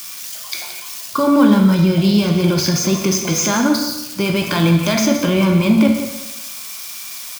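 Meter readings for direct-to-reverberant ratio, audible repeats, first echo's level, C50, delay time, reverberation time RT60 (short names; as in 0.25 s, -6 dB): 2.0 dB, 1, -12.0 dB, 4.0 dB, 0.172 s, 1.0 s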